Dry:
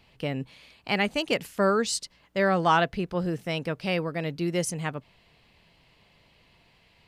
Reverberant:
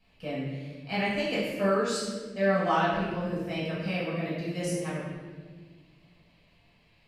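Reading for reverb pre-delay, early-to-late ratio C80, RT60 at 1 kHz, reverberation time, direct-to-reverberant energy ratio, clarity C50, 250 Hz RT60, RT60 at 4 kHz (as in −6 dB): 5 ms, 2.5 dB, 1.2 s, 1.5 s, −10.0 dB, 0.0 dB, 2.4 s, 1.0 s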